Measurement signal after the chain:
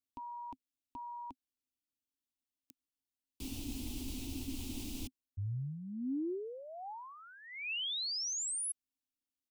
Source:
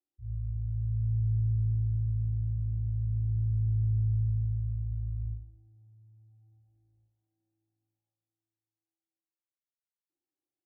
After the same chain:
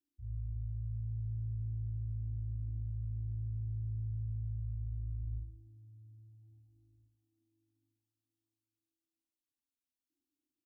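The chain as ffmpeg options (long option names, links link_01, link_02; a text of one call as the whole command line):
ffmpeg -i in.wav -af "firequalizer=gain_entry='entry(100,0);entry(170,-15);entry(260,11);entry(400,-11);entry(570,-20);entry(810,-14);entry(1200,-24);entry(1700,-27);entry(2600,-5)':delay=0.05:min_phase=1,areverse,acompressor=threshold=-39dB:ratio=8,areverse,volume=3.5dB" out.wav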